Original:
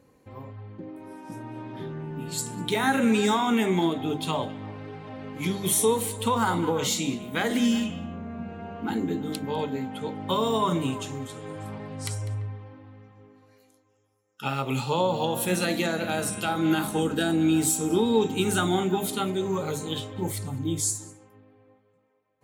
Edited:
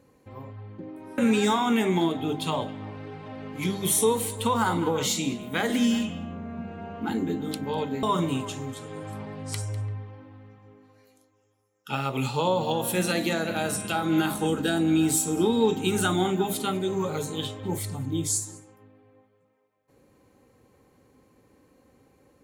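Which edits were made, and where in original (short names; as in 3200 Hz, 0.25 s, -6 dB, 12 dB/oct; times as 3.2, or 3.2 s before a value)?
1.18–2.99 cut
9.84–10.56 cut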